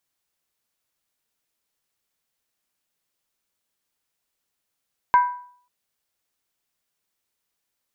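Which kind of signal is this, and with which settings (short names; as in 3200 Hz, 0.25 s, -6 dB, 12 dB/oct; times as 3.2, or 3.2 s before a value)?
skin hit length 0.54 s, lowest mode 984 Hz, decay 0.54 s, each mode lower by 11.5 dB, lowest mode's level -9.5 dB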